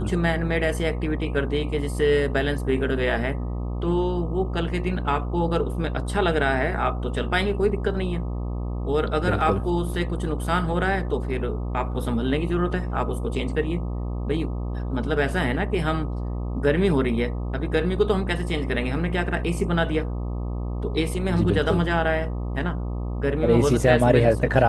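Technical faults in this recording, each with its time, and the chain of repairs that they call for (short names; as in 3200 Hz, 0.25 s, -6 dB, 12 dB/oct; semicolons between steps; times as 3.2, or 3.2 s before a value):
buzz 60 Hz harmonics 21 -28 dBFS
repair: de-hum 60 Hz, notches 21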